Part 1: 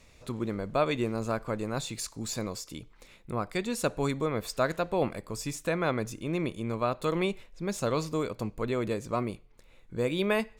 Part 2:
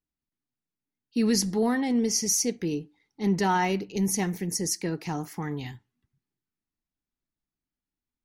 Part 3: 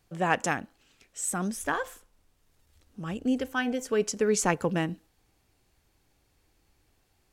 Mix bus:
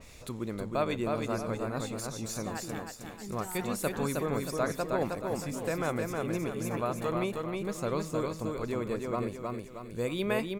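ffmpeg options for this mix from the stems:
-filter_complex "[0:a]volume=0.668,asplit=2[s0][s1];[s1]volume=0.668[s2];[1:a]acompressor=threshold=0.0355:ratio=6,volume=0.237[s3];[2:a]aexciter=amount=5.6:drive=5.1:freq=11000,adelay=2250,volume=0.168,asplit=2[s4][s5];[s5]volume=0.531[s6];[s2][s6]amix=inputs=2:normalize=0,aecho=0:1:314|628|942|1256|1570|1884:1|0.42|0.176|0.0741|0.0311|0.0131[s7];[s0][s3][s4][s7]amix=inputs=4:normalize=0,highshelf=f=7500:g=10,acompressor=mode=upward:threshold=0.00891:ratio=2.5,adynamicequalizer=threshold=0.00316:dfrequency=2500:dqfactor=0.7:tfrequency=2500:tqfactor=0.7:attack=5:release=100:ratio=0.375:range=3.5:mode=cutabove:tftype=highshelf"

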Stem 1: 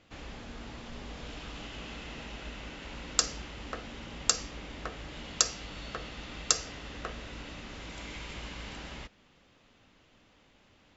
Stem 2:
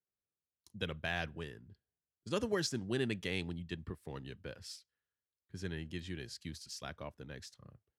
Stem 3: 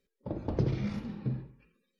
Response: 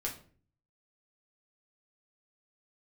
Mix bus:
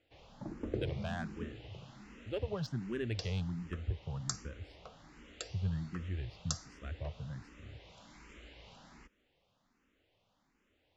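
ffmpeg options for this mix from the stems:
-filter_complex "[0:a]volume=0.266[s0];[1:a]asubboost=boost=9.5:cutoff=110,adynamicsmooth=sensitivity=2.5:basefreq=2200,volume=0.891[s1];[2:a]adelay=150,volume=0.501,asplit=2[s2][s3];[s3]volume=0.133,aecho=0:1:1009:1[s4];[s0][s1][s2][s4]amix=inputs=4:normalize=0,equalizer=f=470:w=0.56:g=3,asplit=2[s5][s6];[s6]afreqshift=1.3[s7];[s5][s7]amix=inputs=2:normalize=1"

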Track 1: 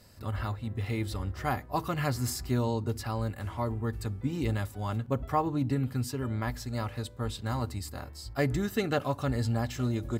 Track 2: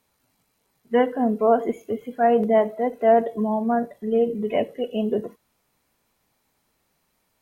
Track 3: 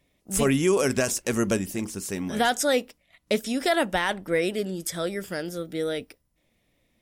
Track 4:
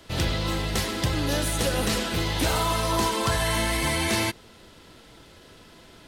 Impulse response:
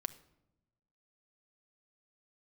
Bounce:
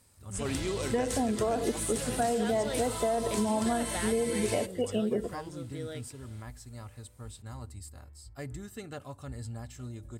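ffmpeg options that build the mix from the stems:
-filter_complex "[0:a]equalizer=f=73:t=o:w=1.1:g=9,volume=0.2[s0];[1:a]alimiter=limit=0.188:level=0:latency=1,volume=0.891[s1];[2:a]lowpass=5300,volume=0.237[s2];[3:a]adelay=350,volume=0.251[s3];[s0][s1][s2][s3]amix=inputs=4:normalize=0,equalizer=f=8500:w=1.9:g=14,acompressor=threshold=0.0562:ratio=6"

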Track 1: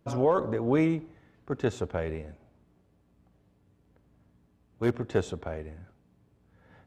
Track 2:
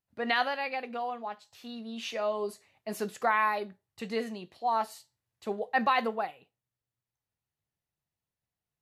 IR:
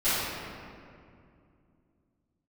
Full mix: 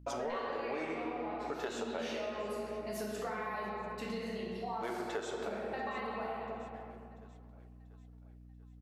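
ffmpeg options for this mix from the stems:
-filter_complex "[0:a]highpass=570,agate=range=0.1:threshold=0.00112:ratio=16:detection=peak,asoftclip=type=tanh:threshold=0.0944,volume=1.33,asplit=3[s0][s1][s2];[s1]volume=0.178[s3];[s2]volume=0.1[s4];[1:a]equalizer=f=5700:t=o:w=0.32:g=3,acompressor=threshold=0.02:ratio=6,volume=0.501,asplit=4[s5][s6][s7][s8];[s6]volume=0.473[s9];[s7]volume=0.0944[s10];[s8]apad=whole_len=302700[s11];[s0][s11]sidechaincompress=threshold=0.00708:ratio=8:attack=16:release=363[s12];[2:a]atrim=start_sample=2205[s13];[s3][s9]amix=inputs=2:normalize=0[s14];[s14][s13]afir=irnorm=-1:irlink=0[s15];[s4][s10]amix=inputs=2:normalize=0,aecho=0:1:689|1378|2067|2756|3445|4134|4823:1|0.49|0.24|0.118|0.0576|0.0282|0.0138[s16];[s12][s5][s15][s16]amix=inputs=4:normalize=0,aeval=exprs='val(0)+0.00224*(sin(2*PI*60*n/s)+sin(2*PI*2*60*n/s)/2+sin(2*PI*3*60*n/s)/3+sin(2*PI*4*60*n/s)/4+sin(2*PI*5*60*n/s)/5)':c=same,acompressor=threshold=0.0178:ratio=6"

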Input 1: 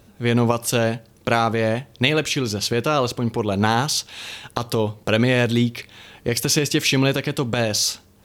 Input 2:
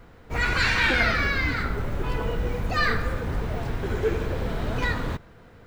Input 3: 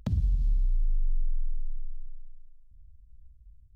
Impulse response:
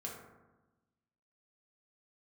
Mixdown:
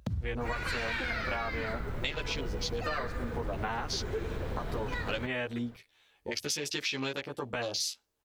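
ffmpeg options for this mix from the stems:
-filter_complex "[0:a]afwtdn=0.0398,equalizer=f=130:w=0.47:g=-14.5,asplit=2[s0][s1];[s1]adelay=12,afreqshift=-0.42[s2];[s0][s2]amix=inputs=2:normalize=1,volume=0.75[s3];[1:a]adelay=100,volume=0.501[s4];[2:a]highpass=f=58:w=0.5412,highpass=f=58:w=1.3066,volume=1[s5];[s3][s4][s5]amix=inputs=3:normalize=0,acompressor=threshold=0.0316:ratio=6"

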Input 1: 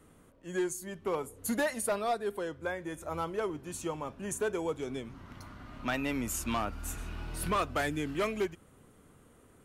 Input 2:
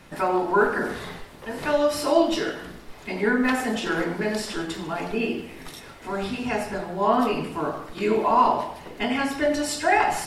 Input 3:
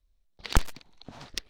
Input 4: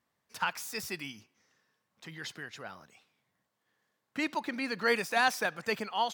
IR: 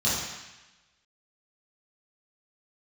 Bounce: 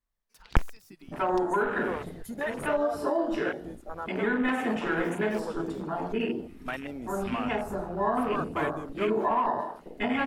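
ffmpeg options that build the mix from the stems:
-filter_complex "[0:a]lowshelf=f=340:g=-9,adelay=800,volume=1[s0];[1:a]adelay=1000,volume=0.75[s1];[2:a]volume=0.944[s2];[3:a]alimiter=level_in=1.12:limit=0.0631:level=0:latency=1:release=35,volume=0.891,acompressor=threshold=0.00708:ratio=6,volume=1.41[s3];[s0][s1][s3]amix=inputs=3:normalize=0,highshelf=f=8500:g=6.5,alimiter=limit=0.141:level=0:latency=1:release=175,volume=1[s4];[s2][s4]amix=inputs=2:normalize=0,afwtdn=0.02"

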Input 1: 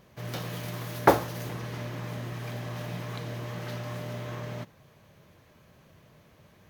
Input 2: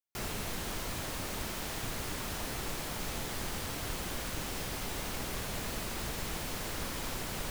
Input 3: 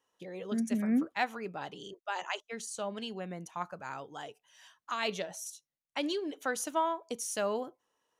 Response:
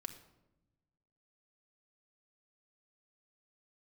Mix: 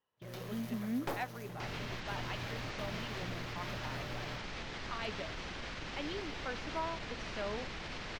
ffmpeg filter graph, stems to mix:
-filter_complex "[0:a]dynaudnorm=f=240:g=3:m=1.58,aeval=exprs='(tanh(12.6*val(0)+0.55)-tanh(0.55))/12.6':c=same,volume=0.282[s0];[1:a]lowpass=f=5300:w=0.5412,lowpass=f=5300:w=1.3066,equalizer=f=2100:t=o:w=1.4:g=5,alimiter=level_in=1.88:limit=0.0631:level=0:latency=1:release=44,volume=0.531,adelay=1450,volume=0.631[s1];[2:a]lowpass=f=4100:w=0.5412,lowpass=f=4100:w=1.3066,volume=0.398,asplit=2[s2][s3];[s3]apad=whole_len=295423[s4];[s0][s4]sidechaingate=range=0.0398:threshold=0.001:ratio=16:detection=peak[s5];[s5][s1][s2]amix=inputs=3:normalize=0,asoftclip=type=hard:threshold=0.0376"

